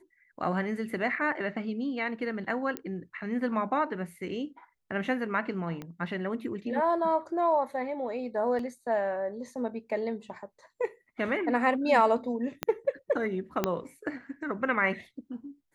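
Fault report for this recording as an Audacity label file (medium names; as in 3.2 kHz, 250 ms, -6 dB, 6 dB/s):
2.770000	2.770000	pop -16 dBFS
5.820000	5.820000	pop -25 dBFS
8.590000	8.590000	dropout 3.2 ms
12.630000	12.630000	pop -13 dBFS
13.640000	13.640000	pop -11 dBFS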